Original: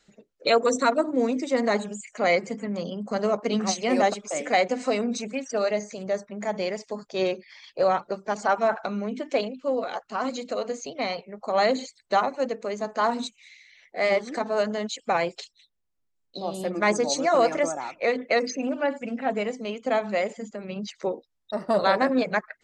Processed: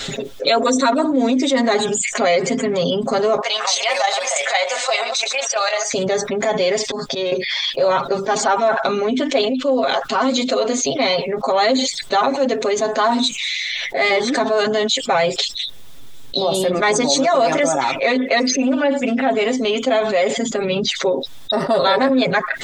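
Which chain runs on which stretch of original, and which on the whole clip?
0:03.41–0:05.94: delay that plays each chunk backwards 228 ms, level −14 dB + inverse Chebyshev high-pass filter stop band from 330 Hz + output level in coarse steps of 10 dB
0:06.85–0:07.32: volume swells 347 ms + notch filter 6,900 Hz, Q 14 + downward compressor 2 to 1, threshold −43 dBFS
whole clip: parametric band 3,500 Hz +12 dB 0.28 octaves; comb filter 7.4 ms, depth 84%; envelope flattener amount 70%

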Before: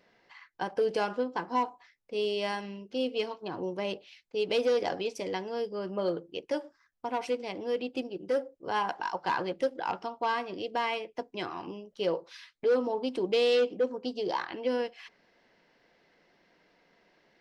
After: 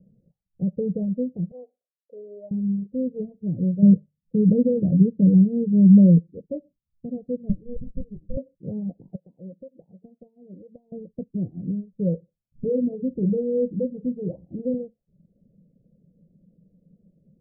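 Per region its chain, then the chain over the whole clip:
0:01.51–0:02.51: high-pass filter 490 Hz 24 dB per octave + double-tracking delay 44 ms −12 dB
0:03.82–0:06.19: parametric band 170 Hz +11 dB 1.9 octaves + mains-hum notches 50/100/150 Hz
0:07.49–0:08.37: high-pass filter 710 Hz + double-tracking delay 19 ms −6 dB + windowed peak hold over 33 samples
0:09.15–0:10.92: high-pass filter 1,000 Hz 6 dB per octave + downward compressor 4 to 1, threshold −38 dBFS
0:12.52–0:14.74: upward compression, threshold −39 dBFS + double-tracking delay 45 ms −8 dB
whole clip: reverb reduction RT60 0.58 s; Butterworth low-pass 570 Hz 72 dB per octave; low shelf with overshoot 250 Hz +11.5 dB, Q 3; level +4.5 dB

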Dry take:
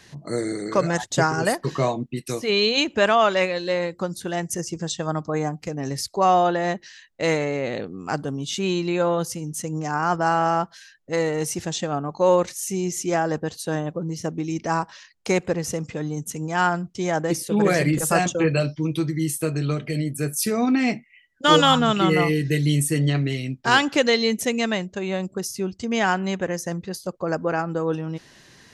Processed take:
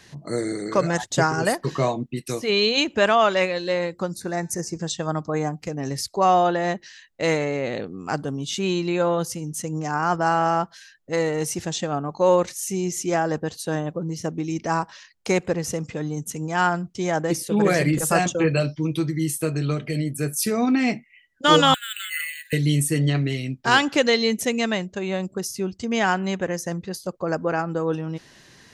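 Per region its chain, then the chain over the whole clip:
0:04.13–0:04.78: Butterworth band-reject 3,100 Hz, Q 2.3 + hum removal 219.8 Hz, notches 31
0:21.74–0:22.53: Chebyshev band-pass filter 1,500–4,600 Hz, order 5 + high-frequency loss of the air 89 metres + bad sample-rate conversion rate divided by 4×, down none, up hold
whole clip: no processing

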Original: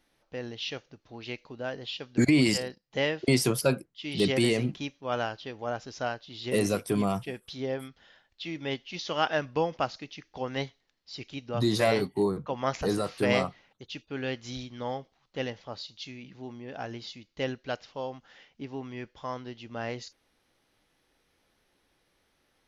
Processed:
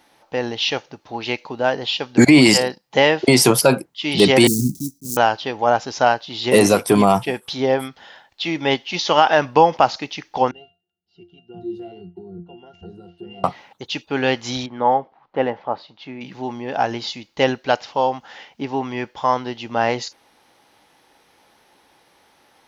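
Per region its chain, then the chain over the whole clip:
0:04.47–0:05.17: one scale factor per block 3 bits + inverse Chebyshev band-stop filter 600–2,900 Hz, stop band 50 dB
0:10.51–0:13.44: flat-topped bell 1,100 Hz −11.5 dB + downward compressor 5 to 1, threshold −31 dBFS + resonances in every octave F, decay 0.26 s
0:14.66–0:16.21: low-pass filter 1,500 Hz + parametric band 71 Hz −8.5 dB 1.8 octaves
whole clip: high-pass filter 190 Hz 6 dB per octave; parametric band 860 Hz +9 dB 0.5 octaves; boost into a limiter +15 dB; level −1 dB

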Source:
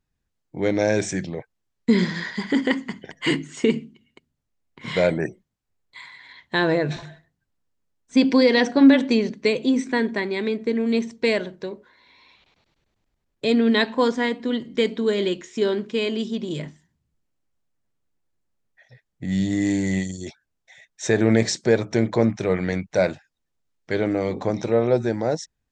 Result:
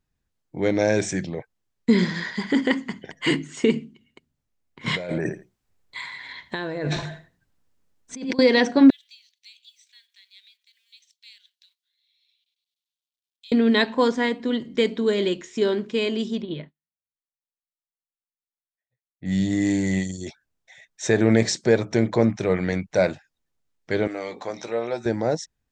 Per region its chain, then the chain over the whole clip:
0:04.86–0:08.39: repeating echo 84 ms, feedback 17%, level −17 dB + compressor whose output falls as the input rises −28 dBFS
0:08.90–0:13.52: mu-law and A-law mismatch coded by A + downward compressor 2 to 1, threshold −38 dBFS + four-pole ladder high-pass 3,000 Hz, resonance 50%
0:16.42–0:19.26: Butterworth low-pass 4,300 Hz 96 dB per octave + expander for the loud parts 2.5 to 1, over −52 dBFS
0:24.07–0:25.06: high-pass filter 1,100 Hz 6 dB per octave + double-tracking delay 17 ms −11 dB
whole clip: no processing

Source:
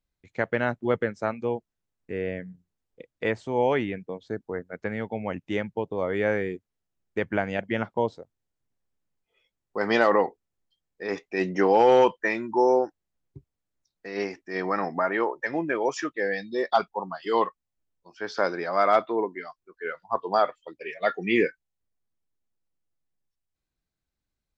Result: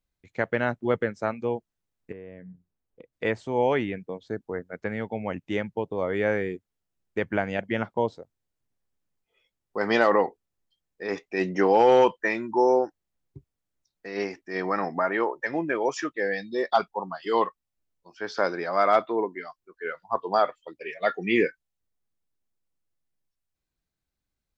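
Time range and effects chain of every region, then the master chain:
0:02.12–0:03.13: high-shelf EQ 2,400 Hz −12 dB + downward compressor 4 to 1, threshold −40 dBFS
whole clip: no processing

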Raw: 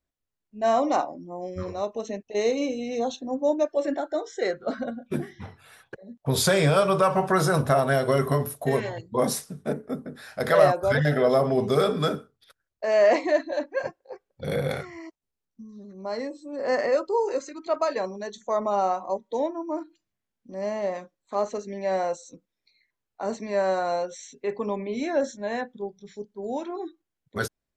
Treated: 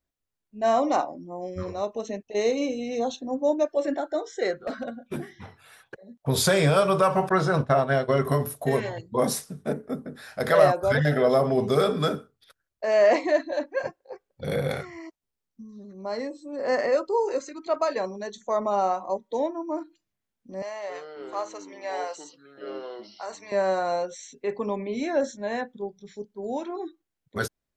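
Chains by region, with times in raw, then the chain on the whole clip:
0:04.67–0:06.24: low-shelf EQ 390 Hz −5 dB + gain into a clipping stage and back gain 25 dB
0:07.29–0:08.25: low-pass filter 4,600 Hz + downward expander −22 dBFS
0:20.62–0:23.52: high-pass filter 840 Hz + delay with pitch and tempo change per echo 269 ms, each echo −6 semitones, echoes 2, each echo −6 dB
whole clip: no processing

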